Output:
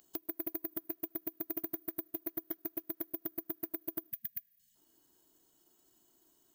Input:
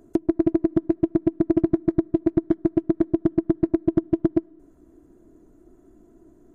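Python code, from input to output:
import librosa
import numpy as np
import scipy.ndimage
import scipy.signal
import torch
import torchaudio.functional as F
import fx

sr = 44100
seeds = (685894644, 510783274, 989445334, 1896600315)

y = np.diff(x, prepend=0.0)
y = (np.kron(y[::3], np.eye(3)[0]) * 3)[:len(y)]
y = fx.spec_erase(y, sr, start_s=4.11, length_s=0.65, low_hz=230.0, high_hz=1600.0)
y = F.gain(torch.from_numpy(y), 2.5).numpy()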